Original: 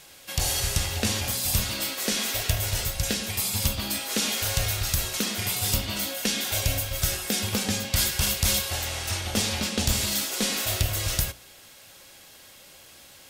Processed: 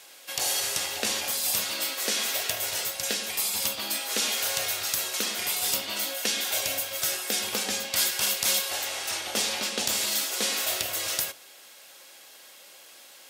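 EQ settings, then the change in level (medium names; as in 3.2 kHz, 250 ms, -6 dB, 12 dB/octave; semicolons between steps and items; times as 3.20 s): high-pass 390 Hz 12 dB/octave; 0.0 dB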